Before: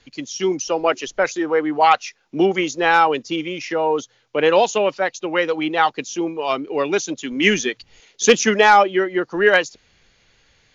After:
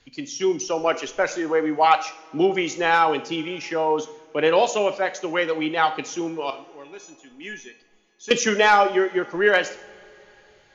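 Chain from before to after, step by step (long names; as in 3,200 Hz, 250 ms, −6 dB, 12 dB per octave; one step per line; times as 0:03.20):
0:06.50–0:08.31: tuned comb filter 850 Hz, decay 0.32 s, mix 90%
coupled-rooms reverb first 0.56 s, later 3.9 s, from −22 dB, DRR 9 dB
level −3.5 dB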